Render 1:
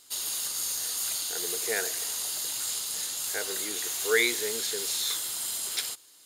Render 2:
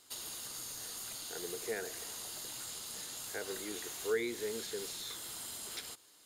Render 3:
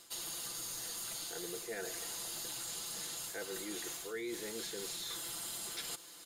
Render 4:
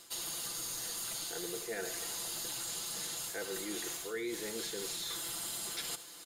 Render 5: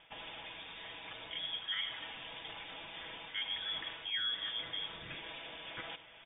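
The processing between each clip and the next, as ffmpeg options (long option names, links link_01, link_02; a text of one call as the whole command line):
ffmpeg -i in.wav -filter_complex "[0:a]acrossover=split=350[link_01][link_02];[link_02]acompressor=threshold=-34dB:ratio=6[link_03];[link_01][link_03]amix=inputs=2:normalize=0,highshelf=frequency=2400:gain=-8" out.wav
ffmpeg -i in.wav -af "aecho=1:1:5.9:0.64,areverse,acompressor=threshold=-47dB:ratio=6,areverse,volume=7.5dB" out.wav
ffmpeg -i in.wav -af "aecho=1:1:77:0.178,volume=2.5dB" out.wav
ffmpeg -i in.wav -af "lowpass=frequency=3100:width_type=q:width=0.5098,lowpass=frequency=3100:width_type=q:width=0.6013,lowpass=frequency=3100:width_type=q:width=0.9,lowpass=frequency=3100:width_type=q:width=2.563,afreqshift=-3700,volume=2dB" out.wav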